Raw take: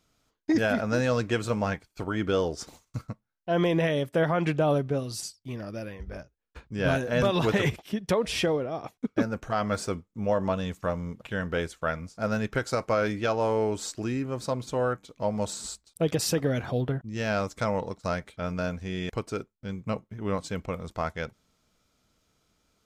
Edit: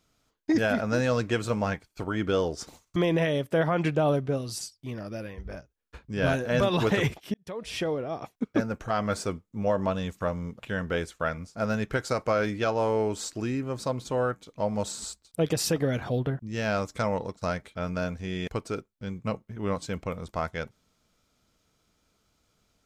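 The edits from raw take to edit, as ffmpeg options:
ffmpeg -i in.wav -filter_complex "[0:a]asplit=3[link_01][link_02][link_03];[link_01]atrim=end=2.962[link_04];[link_02]atrim=start=3.578:end=7.96,asetpts=PTS-STARTPTS,afade=type=out:start_time=4.378:duration=0.004:curve=hsin[link_05];[link_03]atrim=start=7.96,asetpts=PTS-STARTPTS,afade=type=in:duration=0.78[link_06];[link_05][link_06]concat=n=2:v=0:a=1[link_07];[link_04][link_07]acrossfade=duration=0.004:curve1=hsin:curve2=hsin" out.wav

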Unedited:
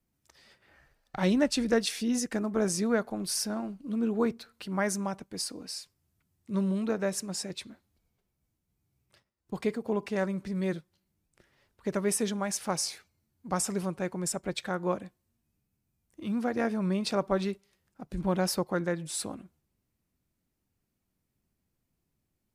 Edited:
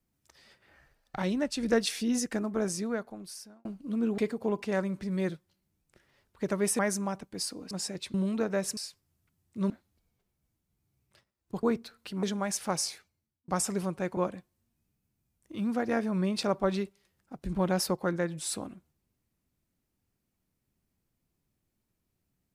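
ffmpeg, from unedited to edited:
ffmpeg -i in.wav -filter_complex "[0:a]asplit=14[link_01][link_02][link_03][link_04][link_05][link_06][link_07][link_08][link_09][link_10][link_11][link_12][link_13][link_14];[link_01]atrim=end=1.222[link_15];[link_02]atrim=start=1.218:end=1.632,asetpts=PTS-STARTPTS,volume=-5dB[link_16];[link_03]atrim=start=1.628:end=3.65,asetpts=PTS-STARTPTS,afade=type=out:start_time=0.642:duration=1.38[link_17];[link_04]atrim=start=3.65:end=4.182,asetpts=PTS-STARTPTS,afade=type=in:duration=0.004:curve=hsin[link_18];[link_05]atrim=start=9.618:end=12.232[link_19];[link_06]atrim=start=4.778:end=5.702[link_20];[link_07]atrim=start=7.258:end=7.692[link_21];[link_08]atrim=start=6.628:end=7.262[link_22];[link_09]atrim=start=5.698:end=6.632[link_23];[link_10]atrim=start=7.688:end=9.622[link_24];[link_11]atrim=start=4.178:end=4.782[link_25];[link_12]atrim=start=12.228:end=13.48,asetpts=PTS-STARTPTS,afade=type=out:start_time=0.592:duration=0.66[link_26];[link_13]atrim=start=13.48:end=14.172,asetpts=PTS-STARTPTS,afade=type=in:duration=0.004:curve=hsin[link_27];[link_14]atrim=start=14.848[link_28];[link_15][link_16]acrossfade=duration=0.004:curve1=hsin:curve2=hsin[link_29];[link_17][link_18]concat=n=2:v=0:a=1[link_30];[link_29][link_30]acrossfade=duration=0.004:curve1=hsin:curve2=hsin[link_31];[link_31][link_19]acrossfade=duration=0.004:curve1=hsin:curve2=hsin[link_32];[link_32][link_20]acrossfade=duration=0.004:curve1=hsin:curve2=hsin[link_33];[link_33][link_21]acrossfade=duration=0.004:curve1=hsin:curve2=hsin[link_34];[link_34][link_22]acrossfade=duration=0.004:curve1=hsin:curve2=hsin[link_35];[link_35][link_23]acrossfade=duration=0.004:curve1=hsin:curve2=hsin[link_36];[link_36][link_24]acrossfade=duration=0.004:curve1=hsin:curve2=hsin[link_37];[link_37][link_25]acrossfade=duration=0.004:curve1=hsin:curve2=hsin[link_38];[link_26][link_27]concat=n=2:v=0:a=1[link_39];[link_38][link_39]acrossfade=duration=0.004:curve1=hsin:curve2=hsin[link_40];[link_40][link_28]acrossfade=duration=0.004:curve1=hsin:curve2=hsin" out.wav

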